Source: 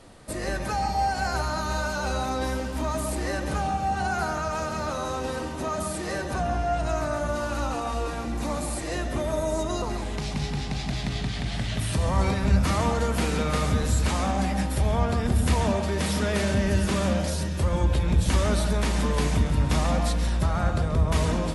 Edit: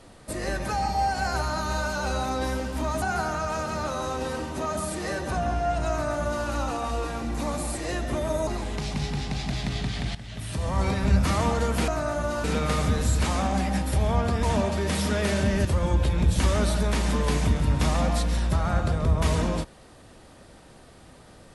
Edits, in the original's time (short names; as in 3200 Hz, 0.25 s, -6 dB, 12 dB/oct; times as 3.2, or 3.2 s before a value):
3.02–4.05 cut
6.93–7.49 copy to 13.28
9.5–9.87 cut
11.55–12.41 fade in linear, from -14.5 dB
15.27–15.54 cut
16.76–17.55 cut